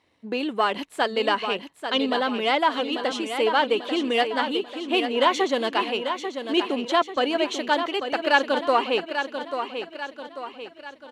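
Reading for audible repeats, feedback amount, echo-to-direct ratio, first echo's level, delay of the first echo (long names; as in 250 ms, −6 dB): 5, 47%, −7.0 dB, −8.0 dB, 841 ms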